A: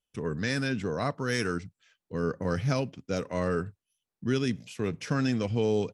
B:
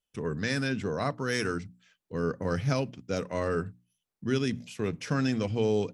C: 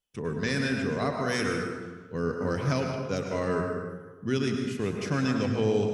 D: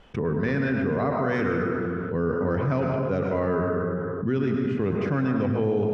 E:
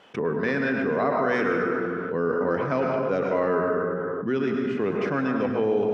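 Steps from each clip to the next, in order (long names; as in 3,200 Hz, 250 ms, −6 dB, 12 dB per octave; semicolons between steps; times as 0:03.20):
mains-hum notches 60/120/180/240/300 Hz
dense smooth reverb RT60 1.4 s, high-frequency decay 0.55×, pre-delay 90 ms, DRR 2 dB
low-pass filter 1,600 Hz 12 dB per octave; envelope flattener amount 70%
Bessel high-pass filter 320 Hz, order 2; level +3.5 dB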